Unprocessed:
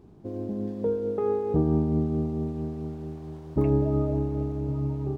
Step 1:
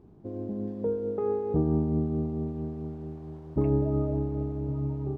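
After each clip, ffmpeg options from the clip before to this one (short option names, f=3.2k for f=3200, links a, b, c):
-af "highshelf=f=2.4k:g=-10,volume=-2dB"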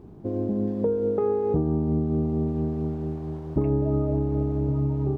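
-af "acompressor=threshold=-29dB:ratio=5,volume=8.5dB"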